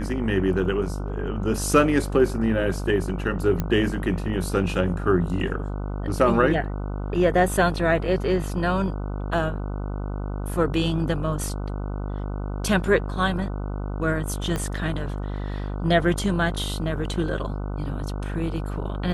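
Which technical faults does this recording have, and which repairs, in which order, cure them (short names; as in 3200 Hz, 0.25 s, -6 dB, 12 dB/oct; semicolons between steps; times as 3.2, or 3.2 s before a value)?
buzz 50 Hz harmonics 30 -29 dBFS
3.6 pop -12 dBFS
14.56 pop -14 dBFS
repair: de-click; de-hum 50 Hz, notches 30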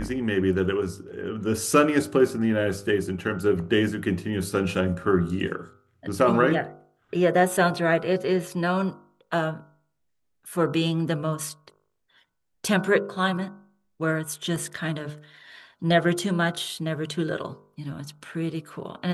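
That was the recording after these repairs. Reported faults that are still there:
14.56 pop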